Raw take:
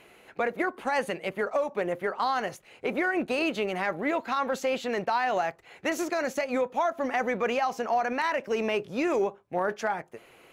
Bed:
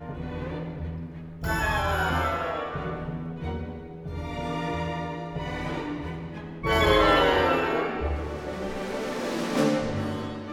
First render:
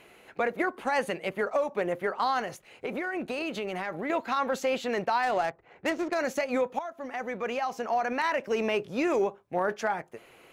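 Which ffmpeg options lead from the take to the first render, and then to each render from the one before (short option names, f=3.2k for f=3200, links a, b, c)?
-filter_complex "[0:a]asettb=1/sr,asplit=3[a][b][c];[a]atrim=end=2.414[d];[b]atrim=start=2.41:end=4.1,asetpts=PTS-STARTPTS,afade=t=in:d=0.004:c=qsin,afade=t=out:st=1.686:d=0.004:c=qsin,acompressor=threshold=-29dB:ratio=4:attack=3.2:release=140:knee=1:detection=peak[e];[c]atrim=start=4.096[f];[d][e]acrossfade=d=0.004:c1=hsin:c2=qsin[g];[g][f]acrossfade=d=0.004:c1=qsin:c2=hsin,asplit=3[h][i][j];[h]afade=t=out:st=5.22:d=0.02[k];[i]adynamicsmooth=sensitivity=5:basefreq=1.4k,afade=t=in:st=5.22:d=0.02,afade=t=out:st=6.14:d=0.02[l];[j]afade=t=in:st=6.14:d=0.02[m];[k][l][m]amix=inputs=3:normalize=0,asplit=2[n][o];[n]atrim=end=6.79,asetpts=PTS-STARTPTS,afade=t=out:st=6.786:d=0.004:c=hsin:silence=0.237137[p];[o]atrim=start=6.79,asetpts=PTS-STARTPTS,afade=t=in:d=1.49:silence=0.237137[q];[p][q]concat=n=2:v=0:a=1"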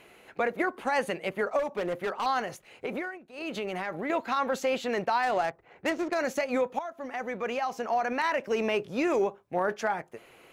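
-filter_complex "[0:a]asettb=1/sr,asplit=3[a][b][c];[a]atrim=end=1.594[d];[b]atrim=start=1.59:end=2.26,asetpts=PTS-STARTPTS,afade=t=in:d=0.004:c=qsin,afade=t=out:st=0.666:d=0.004:c=qsin,volume=26dB,asoftclip=hard,volume=-26dB[e];[c]atrim=start=2.256[f];[d][e]acrossfade=d=0.004:c1=hsin:c2=qsin[g];[g][f]acrossfade=d=0.004:c1=qsin:c2=hsin,asplit=3[h][i][j];[h]atrim=end=3.19,asetpts=PTS-STARTPTS,afade=t=out:st=2.93:d=0.26:c=qsin:silence=0.11885[k];[i]atrim=start=3.19:end=3.32,asetpts=PTS-STARTPTS,volume=-18.5dB[l];[j]atrim=start=3.32,asetpts=PTS-STARTPTS,afade=t=in:d=0.26:c=qsin:silence=0.11885[m];[k][l][m]concat=n=3:v=0:a=1"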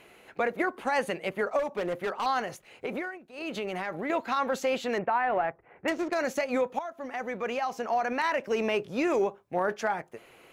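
-filter_complex "[0:a]asettb=1/sr,asplit=3[a][b][c];[a]atrim=end=4.984[d];[b]atrim=start=4.98:end=5.88,asetpts=PTS-STARTPTS,afade=t=in:d=0.004:c=qsin,afade=t=out:st=0.896:d=0.004:c=qsin,lowpass=f=2.4k:w=0.5412,lowpass=f=2.4k:w=1.3066[e];[c]atrim=start=5.876[f];[d][e]acrossfade=d=0.004:c1=hsin:c2=qsin[g];[g][f]acrossfade=d=0.004:c1=qsin:c2=hsin"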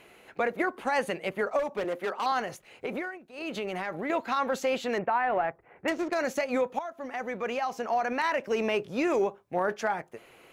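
-filter_complex "[0:a]asettb=1/sr,asplit=3[a][b][c];[a]atrim=end=1.844[d];[b]atrim=start=1.84:end=2.32,asetpts=PTS-STARTPTS,afade=t=in:d=0.004:c=qsin,afade=t=out:st=0.476:d=0.004:c=qsin,highpass=f=200:w=0.5412,highpass=f=200:w=1.3066[e];[c]atrim=start=2.316[f];[d][e]acrossfade=d=0.004:c1=hsin:c2=qsin[g];[g][f]acrossfade=d=0.004:c1=qsin:c2=hsin"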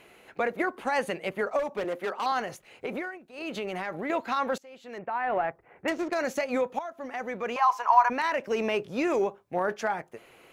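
-filter_complex "[0:a]asettb=1/sr,asplit=3[a][b][c];[a]atrim=end=7.564[d];[b]atrim=start=7.56:end=8.1,asetpts=PTS-STARTPTS,afade=t=in:d=0.004:c=qsin,afade=t=out:st=0.536:d=0.004:c=qsin,highpass=f=1k:t=q:w=11[e];[c]atrim=start=8.096[f];[d][e]acrossfade=d=0.004:c1=hsin:c2=qsin[g];[g][f]acrossfade=d=0.004:c1=qsin:c2=hsin,asplit=2[h][i];[h]atrim=end=4.58,asetpts=PTS-STARTPTS,afade=t=out:st=4.576:d=0.004:c=hsin:silence=0.0668344[j];[i]atrim=start=4.58,asetpts=PTS-STARTPTS,afade=t=in:d=0.75:c=qua:silence=0.0668344[k];[j][k]concat=n=2:v=0:a=1"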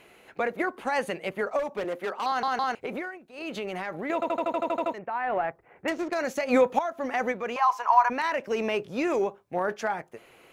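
-filter_complex "[0:a]asplit=3[a][b][c];[a]afade=t=out:st=6.46:d=0.02[d];[b]acontrast=81,afade=t=in:st=6.46:d=0.02,afade=t=out:st=7.31:d=0.02[e];[c]afade=t=in:st=7.31:d=0.02[f];[d][e][f]amix=inputs=3:normalize=0,asplit=14[g][h][i][j][k][l][m][n][o][p][q][r][s][t];[g]atrim=end=2.432[u];[h]atrim=start=2.268:end=2.432[v];[i]atrim=start=2.268:end=2.432[w];[j]atrim=start=2.748:end=4.222[x];[k]atrim=start=4.138:end=4.222[y];[l]atrim=start=4.138:end=4.222[z];[m]atrim=start=4.138:end=4.222[aa];[n]atrim=start=4.138:end=4.222[ab];[o]atrim=start=4.138:end=4.222[ac];[p]atrim=start=4.138:end=4.222[ad];[q]atrim=start=4.138:end=4.222[ae];[r]atrim=start=4.138:end=4.222[af];[s]atrim=start=4.138:end=4.222[ag];[t]atrim=start=4.938[ah];[u][v]acrossfade=d=0.004:c1=hsin:c2=hsin[ai];[ai][w]acrossfade=d=0.004:c1=hsin:c2=hsin[aj];[aj][x]acrossfade=d=0.004:c1=hsin:c2=hsin[ak];[ak][y]acrossfade=d=0.004:c1=hsin:c2=hsin[al];[al][z]acrossfade=d=0.004:c1=hsin:c2=hsin[am];[am][aa]acrossfade=d=0.004:c1=hsin:c2=hsin[an];[an][ab]acrossfade=d=0.004:c1=hsin:c2=hsin[ao];[ao][ac]acrossfade=d=0.004:c1=hsin:c2=hsin[ap];[ap][ad]acrossfade=d=0.004:c1=hsin:c2=hsin[aq];[aq][ae]acrossfade=d=0.004:c1=hsin:c2=hsin[ar];[ar][af]acrossfade=d=0.004:c1=hsin:c2=hsin[as];[as][ag]acrossfade=d=0.004:c1=hsin:c2=hsin[at];[at][ah]acrossfade=d=0.004:c1=hsin:c2=hsin"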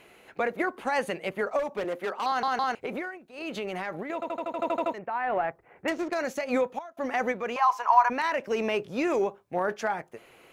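-filter_complex "[0:a]asplit=4[a][b][c][d];[a]atrim=end=4.032[e];[b]atrim=start=4.028:end=4.592,asetpts=PTS-STARTPTS,volume=-5dB[f];[c]atrim=start=4.588:end=6.97,asetpts=PTS-STARTPTS,afade=t=out:st=1.282:d=1.1:c=qsin:silence=0.0749894[g];[d]atrim=start=6.97,asetpts=PTS-STARTPTS,afade=t=in:d=0.004:c=hsin:silence=0.0749894[h];[e][f]acrossfade=d=0.004:c1=hsin:c2=hsin[i];[g][h]concat=n=2:v=0:a=1[j];[i][j]acrossfade=d=0.004:c1=hsin:c2=hsin"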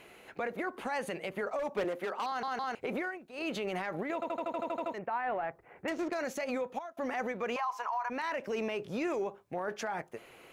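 -af "acompressor=threshold=-27dB:ratio=6,alimiter=level_in=2dB:limit=-24dB:level=0:latency=1:release=54,volume=-2dB"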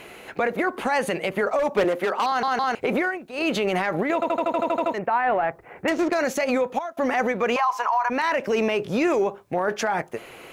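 -af "volume=12dB"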